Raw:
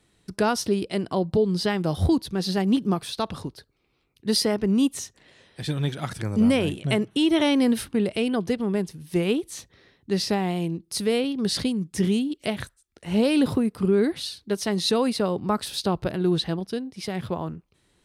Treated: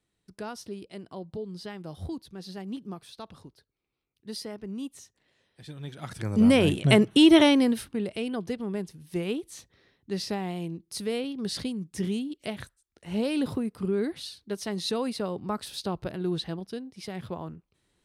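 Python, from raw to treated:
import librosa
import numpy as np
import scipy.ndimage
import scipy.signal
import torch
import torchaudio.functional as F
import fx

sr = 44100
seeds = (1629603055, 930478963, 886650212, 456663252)

y = fx.gain(x, sr, db=fx.line((5.78, -15.0), (6.26, -2.5), (6.78, 4.5), (7.36, 4.5), (7.84, -7.0)))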